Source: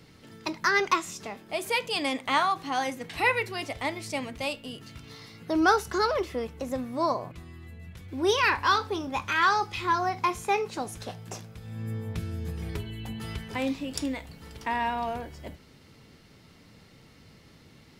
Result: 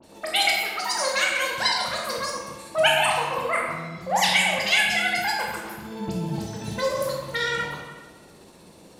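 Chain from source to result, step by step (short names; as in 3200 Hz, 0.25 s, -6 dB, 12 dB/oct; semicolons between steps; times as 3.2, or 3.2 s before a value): Chebyshev low-pass 7600 Hz, order 8; dispersion highs, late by 80 ms, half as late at 1800 Hz; rotary speaker horn 8 Hz; reverb RT60 2.5 s, pre-delay 27 ms, DRR -1.5 dB; speed mistake 7.5 ips tape played at 15 ips; gain +3.5 dB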